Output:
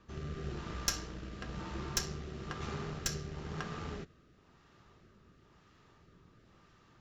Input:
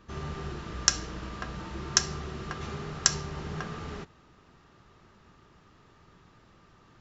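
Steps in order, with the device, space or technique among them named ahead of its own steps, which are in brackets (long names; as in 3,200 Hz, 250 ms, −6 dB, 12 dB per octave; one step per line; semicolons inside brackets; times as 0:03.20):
overdriven rotary cabinet (tube saturation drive 23 dB, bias 0.7; rotating-speaker cabinet horn 1 Hz)
level +1.5 dB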